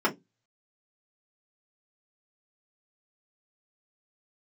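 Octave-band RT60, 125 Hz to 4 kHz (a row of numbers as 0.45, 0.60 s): 0.40, 0.25, 0.20, 0.15, 0.10, 0.15 s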